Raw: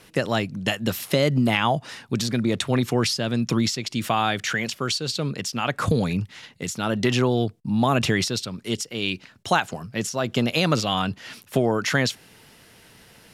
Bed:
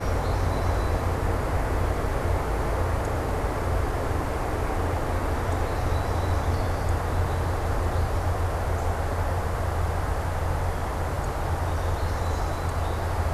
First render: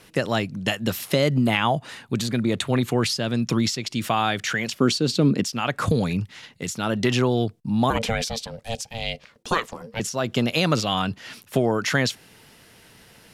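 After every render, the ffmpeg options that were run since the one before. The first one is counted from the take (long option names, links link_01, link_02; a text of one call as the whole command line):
ffmpeg -i in.wav -filter_complex "[0:a]asettb=1/sr,asplit=3[link_01][link_02][link_03];[link_01]atrim=end=1.344[link_04];[link_02]atrim=start=1.34:end=3.1,asetpts=PTS-STARTPTS,afade=type=in:duration=0.004:curve=qsin,afade=type=out:start_time=1.756:duration=0.004:curve=qsin,equalizer=frequency=5400:width_type=o:width=0.23:gain=-8.5[link_05];[link_03]atrim=start=3.096[link_06];[link_04][link_05]acrossfade=duration=0.004:curve1=hsin:curve2=qsin[link_07];[link_07][link_06]acrossfade=duration=0.004:curve1=qsin:curve2=hsin,asettb=1/sr,asplit=3[link_08][link_09][link_10];[link_08]atrim=end=4.804[link_11];[link_09]atrim=start=4.8:end=5.44,asetpts=PTS-STARTPTS,afade=type=in:duration=0.004:curve=qsin,afade=type=out:start_time=0.636:duration=0.004:curve=qsin,equalizer=frequency=260:width=0.91:gain=13.5[link_12];[link_10]atrim=start=5.436[link_13];[link_11][link_12]acrossfade=duration=0.004:curve1=hsin:curve2=qsin[link_14];[link_14][link_13]acrossfade=duration=0.004:curve1=qsin:curve2=hsin,asettb=1/sr,asplit=3[link_15][link_16][link_17];[link_15]atrim=end=7.904[link_18];[link_16]atrim=start=7.9:end=10,asetpts=PTS-STARTPTS,afade=type=in:duration=0.004:curve=qsin,afade=type=out:start_time=2.096:duration=0.004:curve=qsin,aeval=exprs='val(0)*sin(2*PI*340*n/s)':channel_layout=same[link_19];[link_17]atrim=start=9.996[link_20];[link_18][link_19]acrossfade=duration=0.004:curve1=hsin:curve2=qsin[link_21];[link_21][link_20]acrossfade=duration=0.004:curve1=qsin:curve2=hsin" out.wav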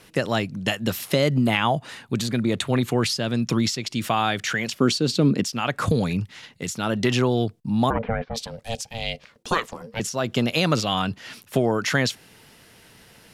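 ffmpeg -i in.wav -filter_complex "[0:a]asplit=3[link_01][link_02][link_03];[link_01]afade=type=out:start_time=7.89:duration=0.02[link_04];[link_02]lowpass=frequency=1700:width=0.5412,lowpass=frequency=1700:width=1.3066,afade=type=in:start_time=7.89:duration=0.02,afade=type=out:start_time=8.34:duration=0.02[link_05];[link_03]afade=type=in:start_time=8.34:duration=0.02[link_06];[link_04][link_05][link_06]amix=inputs=3:normalize=0" out.wav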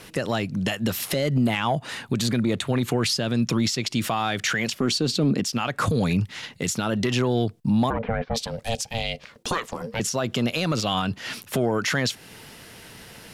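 ffmpeg -i in.wav -af "acontrast=71,alimiter=limit=-14dB:level=0:latency=1:release=253" out.wav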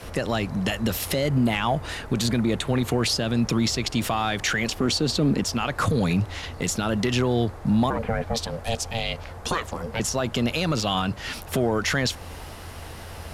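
ffmpeg -i in.wav -i bed.wav -filter_complex "[1:a]volume=-13dB[link_01];[0:a][link_01]amix=inputs=2:normalize=0" out.wav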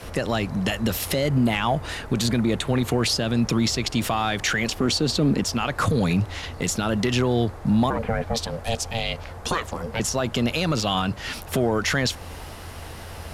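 ffmpeg -i in.wav -af "volume=1dB" out.wav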